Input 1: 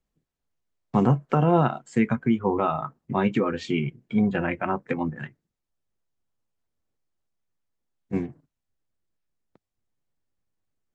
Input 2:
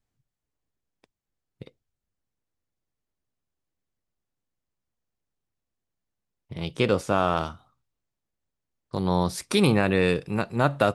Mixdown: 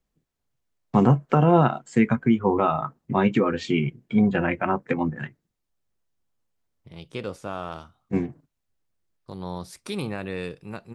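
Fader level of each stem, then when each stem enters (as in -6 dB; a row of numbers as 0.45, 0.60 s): +2.5, -10.0 dB; 0.00, 0.35 s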